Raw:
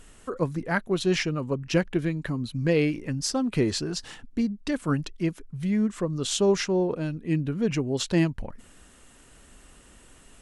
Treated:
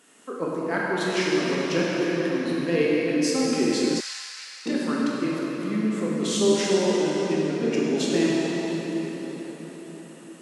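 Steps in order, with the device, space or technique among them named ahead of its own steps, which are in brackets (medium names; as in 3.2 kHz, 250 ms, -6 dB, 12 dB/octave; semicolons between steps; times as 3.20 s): cathedral (reverberation RT60 5.2 s, pre-delay 13 ms, DRR -6 dB); 4.00–4.66 s: high-pass 1.2 kHz 24 dB/octave; high-pass 210 Hz 24 dB/octave; trim -3 dB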